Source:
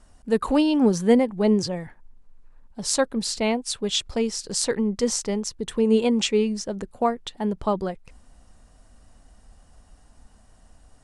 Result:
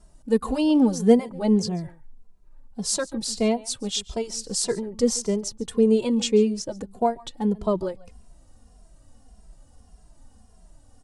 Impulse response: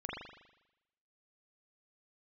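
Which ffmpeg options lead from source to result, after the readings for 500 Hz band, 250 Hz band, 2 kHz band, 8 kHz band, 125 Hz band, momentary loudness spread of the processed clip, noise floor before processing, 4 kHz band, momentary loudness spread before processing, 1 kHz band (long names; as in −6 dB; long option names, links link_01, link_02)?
0.0 dB, 0.0 dB, −5.5 dB, 0.0 dB, +0.5 dB, 12 LU, −55 dBFS, −2.5 dB, 10 LU, −2.0 dB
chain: -filter_complex "[0:a]equalizer=frequency=1900:width_type=o:width=2:gain=-8,aecho=1:1:140:0.0891,asplit=2[link_01][link_02];[link_02]adelay=2.5,afreqshift=-1.7[link_03];[link_01][link_03]amix=inputs=2:normalize=1,volume=4dB"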